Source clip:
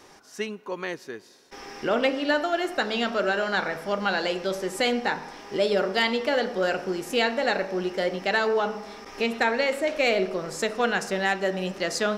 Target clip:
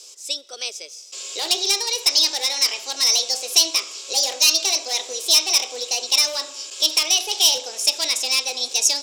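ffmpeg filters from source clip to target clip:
-filter_complex "[0:a]lowpass=6.3k,equalizer=f=4k:t=o:w=0.48:g=11,acrossover=split=800|1900[a][b][c];[b]dynaudnorm=f=310:g=5:m=7dB[d];[a][d][c]amix=inputs=3:normalize=0,highpass=f=300:t=q:w=3.6,asoftclip=type=hard:threshold=-13dB,aexciter=amount=15.9:drive=4.2:freq=2.1k,asetrate=59535,aresample=44100,volume=-13.5dB"

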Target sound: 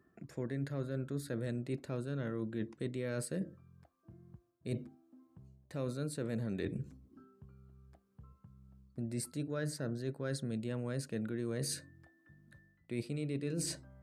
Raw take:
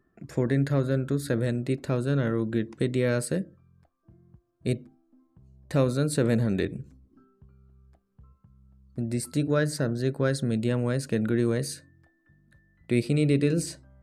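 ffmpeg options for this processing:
-af "highpass=74,areverse,acompressor=threshold=-35dB:ratio=6,areverse"

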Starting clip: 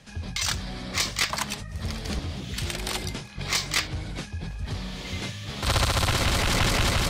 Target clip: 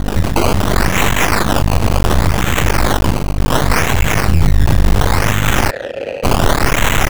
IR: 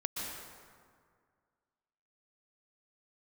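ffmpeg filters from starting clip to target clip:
-filter_complex "[0:a]aecho=1:1:343:0.266,asettb=1/sr,asplit=3[a][b][c];[a]atrim=end=3.144[d];[b]atrim=start=3.14:end=3.54,asetpts=PTS-STARTPTS,afade=t=in:d=0.004:c=qsin,afade=t=out:st=0.396:d=0.004:c=qsin,aeval=exprs='0.178*(cos(1*acos(clip(val(0)/0.178,-1,1)))-cos(1*PI/2))+0.0398*(cos(3*acos(clip(val(0)/0.178,-1,1)))-cos(3*PI/2))':c=same[e];[c]atrim=start=3.536[f];[d][e]acrossfade=d=0.004:c1=hsin:c2=qsin[g];[g][f]acrossfade=d=0.004:c1=qsin:c2=hsin,equalizer=f=410:w=0.56:g=-14,asoftclip=type=tanh:threshold=-26dB,acrossover=split=400|1800[h][i][j];[h]acompressor=threshold=-35dB:ratio=4[k];[i]acompressor=threshold=-40dB:ratio=4[l];[j]acompressor=threshold=-35dB:ratio=4[m];[k][l][m]amix=inputs=3:normalize=0,asettb=1/sr,asplit=3[n][o][p];[n]atrim=end=4.274[q];[o]atrim=start=4.27:end=5.08,asetpts=PTS-STARTPTS,afade=t=in:d=0.004:c=qsin,afade=t=out:st=0.806:d=0.004:c=qsin,bass=f=250:g=11,treble=f=4k:g=7[r];[p]atrim=start=5.076[s];[q][r]acrossfade=d=0.004:c1=hsin:c2=qsin[t];[t][s]acrossfade=d=0.004:c1=qsin:c2=hsin,acrusher=samples=17:mix=1:aa=0.000001:lfo=1:lforange=17:lforate=0.69,aeval=exprs='val(0)+0.00794*(sin(2*PI*50*n/s)+sin(2*PI*2*50*n/s)/2+sin(2*PI*3*50*n/s)/3+sin(2*PI*4*50*n/s)/4+sin(2*PI*5*50*n/s)/5)':c=same,aeval=exprs='max(val(0),0)':c=same,asplit=3[u][v][w];[u]afade=t=out:st=5.69:d=0.02[x];[v]asplit=3[y][z][aa];[y]bandpass=f=530:t=q:w=8,volume=0dB[ab];[z]bandpass=f=1.84k:t=q:w=8,volume=-6dB[ac];[aa]bandpass=f=2.48k:t=q:w=8,volume=-9dB[ad];[ab][ac][ad]amix=inputs=3:normalize=0,afade=t=in:st=5.69:d=0.02,afade=t=out:st=6.23:d=0.02[ae];[w]afade=t=in:st=6.23:d=0.02[af];[x][ae][af]amix=inputs=3:normalize=0,alimiter=level_in=30.5dB:limit=-1dB:release=50:level=0:latency=1,volume=-1dB"

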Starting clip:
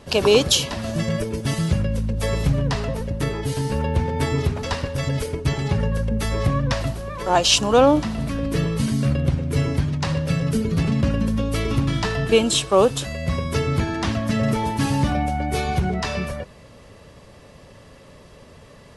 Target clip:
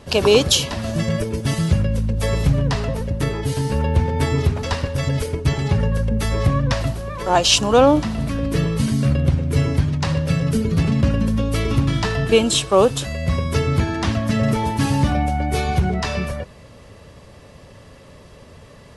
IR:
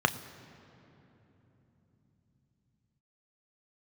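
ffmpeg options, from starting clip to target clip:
-af "equalizer=f=84:t=o:w=0.98:g=3.5,volume=1.5dB"

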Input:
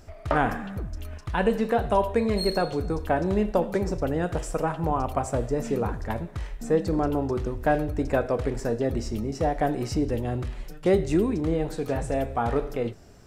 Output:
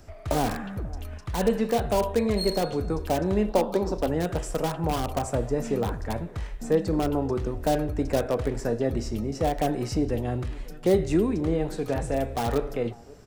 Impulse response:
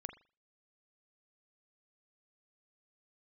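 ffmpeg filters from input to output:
-filter_complex "[0:a]asettb=1/sr,asplit=3[a][b][c];[a]atrim=end=3.494[d];[b]atrim=start=3.49:end=4.08,asetpts=PTS-STARTPTS,afade=t=in:d=0.004:c=qsin,afade=t=out:st=0.586:d=0.004:c=qsin,equalizer=f=125:t=o:w=1:g=-12,equalizer=f=250:t=o:w=1:g=4,equalizer=f=1k:t=o:w=1:g=9,equalizer=f=2k:t=o:w=1:g=-11,equalizer=f=4k:t=o:w=1:g=7,equalizer=f=8k:t=o:w=1:g=-6[e];[c]atrim=start=4.076[f];[d][e]acrossfade=d=0.004:c1=hsin:c2=qsin[g];[g][f]acrossfade=d=0.004:c1=qsin:c2=hsin,acrossover=split=160|950|3800[h][i][j][k];[i]aecho=1:1:539:0.0841[l];[j]aeval=exprs='(mod(35.5*val(0)+1,2)-1)/35.5':c=same[m];[h][l][m][k]amix=inputs=4:normalize=0"

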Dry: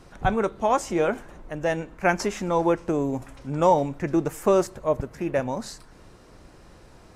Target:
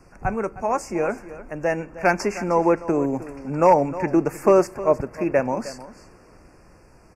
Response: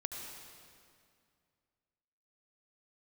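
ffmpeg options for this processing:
-filter_complex "[0:a]acrossover=split=190|4600[a][b][c];[b]dynaudnorm=f=220:g=13:m=11.5dB[d];[a][d][c]amix=inputs=3:normalize=0,asoftclip=type=hard:threshold=-4.5dB,asuperstop=centerf=3500:order=20:qfactor=2.1,aecho=1:1:310:0.168,volume=-2dB"

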